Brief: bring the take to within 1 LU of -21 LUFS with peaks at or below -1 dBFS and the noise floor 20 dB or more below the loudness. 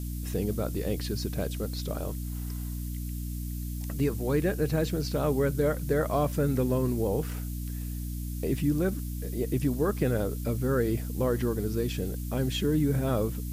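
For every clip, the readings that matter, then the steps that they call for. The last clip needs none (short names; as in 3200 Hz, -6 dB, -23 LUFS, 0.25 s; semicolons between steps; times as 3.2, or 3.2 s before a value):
hum 60 Hz; harmonics up to 300 Hz; hum level -32 dBFS; noise floor -35 dBFS; noise floor target -50 dBFS; loudness -29.5 LUFS; peak -13.5 dBFS; loudness target -21.0 LUFS
-> de-hum 60 Hz, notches 5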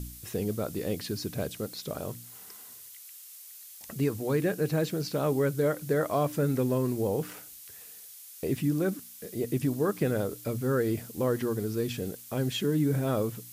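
hum none; noise floor -48 dBFS; noise floor target -50 dBFS
-> denoiser 6 dB, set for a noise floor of -48 dBFS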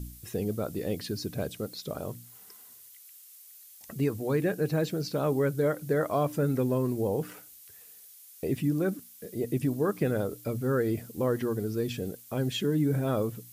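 noise floor -52 dBFS; loudness -30.0 LUFS; peak -15.5 dBFS; loudness target -21.0 LUFS
-> gain +9 dB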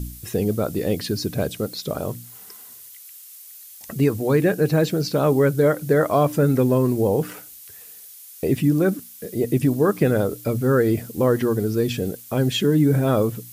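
loudness -21.0 LUFS; peak -6.5 dBFS; noise floor -43 dBFS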